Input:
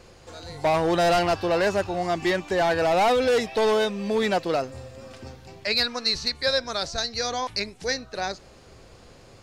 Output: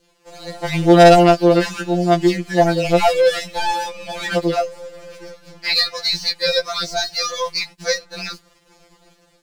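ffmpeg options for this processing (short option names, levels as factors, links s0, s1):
-af "aeval=exprs='sgn(val(0))*max(abs(val(0))-0.00422,0)':c=same,dynaudnorm=f=130:g=5:m=1.88,adynamicequalizer=threshold=0.0282:dfrequency=1100:dqfactor=0.97:tfrequency=1100:tqfactor=0.97:attack=5:release=100:ratio=0.375:range=3:mode=cutabove:tftype=bell,afftfilt=real='re*2.83*eq(mod(b,8),0)':imag='im*2.83*eq(mod(b,8),0)':win_size=2048:overlap=0.75,volume=1.5"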